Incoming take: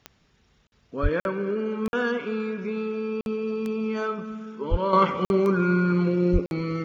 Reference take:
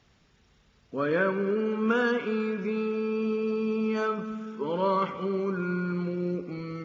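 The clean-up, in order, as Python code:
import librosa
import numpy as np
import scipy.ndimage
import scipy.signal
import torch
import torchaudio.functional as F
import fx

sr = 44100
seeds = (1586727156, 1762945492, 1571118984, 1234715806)

y = fx.fix_declick_ar(x, sr, threshold=10.0)
y = fx.highpass(y, sr, hz=140.0, slope=24, at=(1.02, 1.14), fade=0.02)
y = fx.highpass(y, sr, hz=140.0, slope=24, at=(4.7, 4.82), fade=0.02)
y = fx.highpass(y, sr, hz=140.0, slope=24, at=(6.32, 6.44), fade=0.02)
y = fx.fix_interpolate(y, sr, at_s=(0.67, 1.2, 1.88, 3.21, 5.25, 6.46), length_ms=51.0)
y = fx.gain(y, sr, db=fx.steps((0.0, 0.0), (4.93, -8.0)))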